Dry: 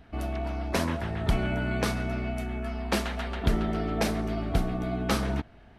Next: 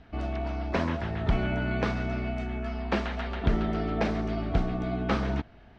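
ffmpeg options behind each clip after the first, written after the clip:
ffmpeg -i in.wav -filter_complex "[0:a]acrossover=split=3100[link_01][link_02];[link_02]acompressor=threshold=-48dB:ratio=4:attack=1:release=60[link_03];[link_01][link_03]amix=inputs=2:normalize=0,lowpass=frequency=6200:width=0.5412,lowpass=frequency=6200:width=1.3066" out.wav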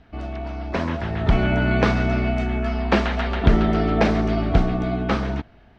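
ffmpeg -i in.wav -af "dynaudnorm=framelen=270:gausssize=9:maxgain=10.5dB,volume=1dB" out.wav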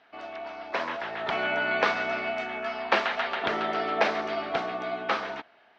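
ffmpeg -i in.wav -af "highpass=670,lowpass=5100" out.wav

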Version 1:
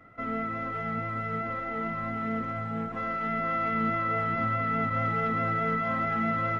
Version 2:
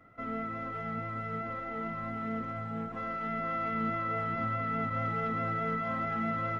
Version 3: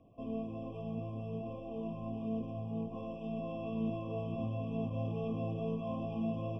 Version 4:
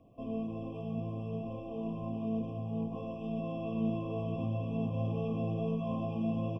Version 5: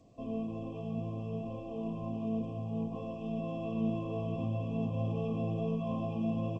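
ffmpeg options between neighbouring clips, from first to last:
ffmpeg -i in.wav -af "equalizer=frequency=2000:width_type=o:width=0.77:gain=-2,volume=-4dB" out.wav
ffmpeg -i in.wav -af "lowpass=frequency=3100:poles=1,bandreject=frequency=880:width=5,afftfilt=real='re*eq(mod(floor(b*sr/1024/1200),2),0)':imag='im*eq(mod(floor(b*sr/1024/1200),2),0)':win_size=1024:overlap=0.75" out.wav
ffmpeg -i in.wav -af "aecho=1:1:90.38|174.9:0.282|0.251,volume=1.5dB" out.wav
ffmpeg -i in.wav -ar 16000 -c:a g722 out.g722

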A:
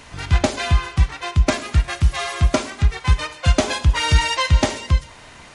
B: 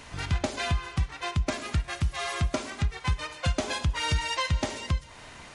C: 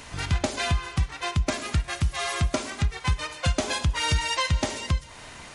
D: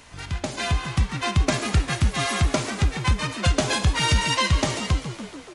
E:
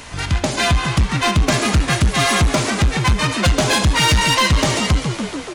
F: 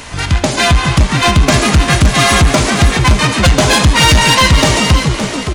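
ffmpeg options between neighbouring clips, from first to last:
ffmpeg -i in.wav -af "acompressor=threshold=-23dB:ratio=2.5,volume=-3.5dB" out.wav
ffmpeg -i in.wav -af "highshelf=frequency=6500:gain=5.5,volume=2.5dB" out.wav
ffmpeg -i in.wav -filter_complex "[0:a]dynaudnorm=framelen=110:gausssize=11:maxgain=11.5dB,asplit=2[link_01][link_02];[link_02]asplit=8[link_03][link_04][link_05][link_06][link_07][link_08][link_09][link_10];[link_03]adelay=142,afreqshift=72,volume=-12dB[link_11];[link_04]adelay=284,afreqshift=144,volume=-15.9dB[link_12];[link_05]adelay=426,afreqshift=216,volume=-19.8dB[link_13];[link_06]adelay=568,afreqshift=288,volume=-23.6dB[link_14];[link_07]adelay=710,afreqshift=360,volume=-27.5dB[link_15];[link_08]adelay=852,afreqshift=432,volume=-31.4dB[link_16];[link_09]adelay=994,afreqshift=504,volume=-35.3dB[link_17];[link_10]adelay=1136,afreqshift=576,volume=-39.1dB[link_18];[link_11][link_12][link_13][link_14][link_15][link_16][link_17][link_18]amix=inputs=8:normalize=0[link_19];[link_01][link_19]amix=inputs=2:normalize=0,volume=-5.5dB" out.wav
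ffmpeg -i in.wav -filter_complex "[0:a]asplit=2[link_01][link_02];[link_02]alimiter=limit=-16dB:level=0:latency=1:release=449,volume=1dB[link_03];[link_01][link_03]amix=inputs=2:normalize=0,asoftclip=type=tanh:threshold=-15.5dB,volume=6dB" out.wav
ffmpeg -i in.wav -af "aecho=1:1:567:0.335,volume=6dB" out.wav

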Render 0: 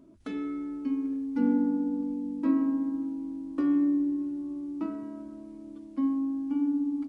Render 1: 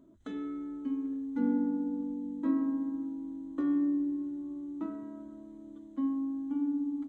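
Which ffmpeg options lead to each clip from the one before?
ffmpeg -i in.wav -af "superequalizer=12b=0.447:14b=0.282:16b=0.355,volume=-4dB" out.wav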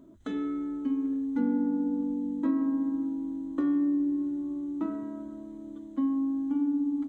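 ffmpeg -i in.wav -af "acompressor=threshold=-31dB:ratio=2.5,volume=6dB" out.wav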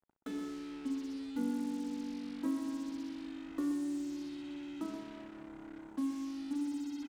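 ffmpeg -i in.wav -af "acrusher=bits=6:mix=0:aa=0.5,aecho=1:1:127:0.355,volume=-7.5dB" out.wav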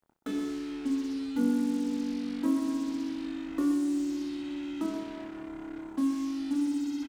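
ffmpeg -i in.wav -filter_complex "[0:a]asplit=2[link_01][link_02];[link_02]adelay=25,volume=-7dB[link_03];[link_01][link_03]amix=inputs=2:normalize=0,volume=6dB" out.wav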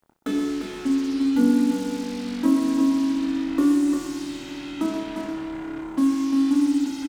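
ffmpeg -i in.wav -af "aecho=1:1:349:0.501,volume=8dB" out.wav

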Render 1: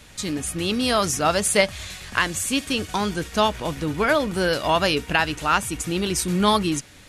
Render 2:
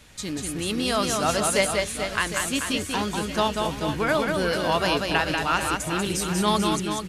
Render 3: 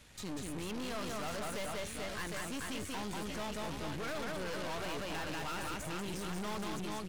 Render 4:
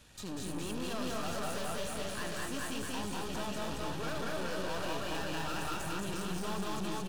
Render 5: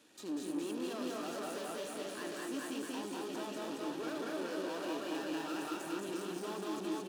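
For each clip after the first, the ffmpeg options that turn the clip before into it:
ffmpeg -i in.wav -af "aecho=1:1:190|437|758.1|1176|1718:0.631|0.398|0.251|0.158|0.1,volume=-4dB" out.wav
ffmpeg -i in.wav -filter_complex "[0:a]acrossover=split=3200[link_01][link_02];[link_02]acompressor=threshold=-36dB:ratio=4:attack=1:release=60[link_03];[link_01][link_03]amix=inputs=2:normalize=0,aeval=exprs='(tanh(56.2*val(0)+0.75)-tanh(0.75))/56.2':channel_layout=same,volume=-3dB" out.wav
ffmpeg -i in.wav -filter_complex "[0:a]bandreject=frequency=2100:width=6.5,asplit=2[link_01][link_02];[link_02]aecho=0:1:81.63|221.6:0.282|0.794[link_03];[link_01][link_03]amix=inputs=2:normalize=0" out.wav
ffmpeg -i in.wav -af "highpass=frequency=310:width_type=q:width=3.5,volume=-5.5dB" out.wav

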